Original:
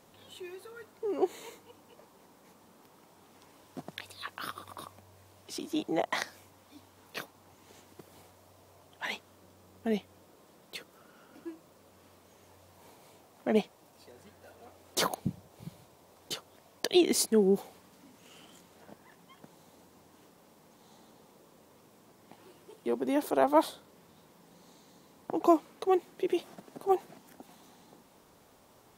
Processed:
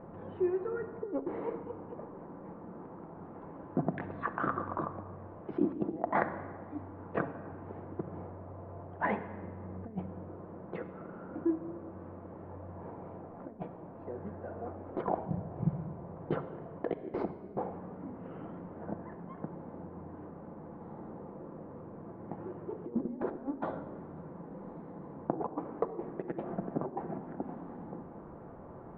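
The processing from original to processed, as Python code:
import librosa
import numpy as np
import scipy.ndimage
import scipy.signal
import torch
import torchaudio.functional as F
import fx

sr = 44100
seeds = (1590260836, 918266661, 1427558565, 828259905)

y = scipy.signal.sosfilt(scipy.signal.cheby2(4, 70, 6600.0, 'lowpass', fs=sr, output='sos'), x)
y = fx.tilt_shelf(y, sr, db=5.5, hz=940.0)
y = fx.over_compress(y, sr, threshold_db=-35.0, ratio=-0.5)
y = fx.room_shoebox(y, sr, seeds[0], volume_m3=2700.0, walls='mixed', distance_m=0.76)
y = F.gain(torch.from_numpy(y), 1.0).numpy()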